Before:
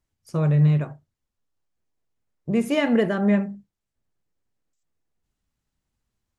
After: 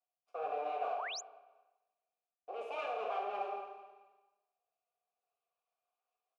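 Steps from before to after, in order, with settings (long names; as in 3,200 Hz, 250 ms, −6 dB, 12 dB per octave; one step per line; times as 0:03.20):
lower of the sound and its delayed copy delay 4.2 ms
Chebyshev high-pass filter 380 Hz, order 5
high-shelf EQ 5,400 Hz −8.5 dB
leveller curve on the samples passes 3
reversed playback
downward compressor 6 to 1, threshold −44 dBFS, peak gain reduction 25 dB
reversed playback
asymmetric clip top −40 dBFS
formant filter a
repeating echo 220 ms, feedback 34%, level −13 dB
four-comb reverb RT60 0.94 s, combs from 26 ms, DRR 1 dB
sound drawn into the spectrogram rise, 0:00.96–0:01.21, 620–7,500 Hz −55 dBFS
level +13 dB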